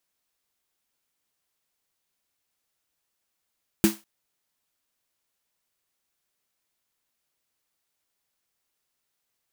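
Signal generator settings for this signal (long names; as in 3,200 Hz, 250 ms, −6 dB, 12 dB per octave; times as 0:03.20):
synth snare length 0.20 s, tones 210 Hz, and 330 Hz, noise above 560 Hz, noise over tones −8 dB, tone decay 0.19 s, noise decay 0.27 s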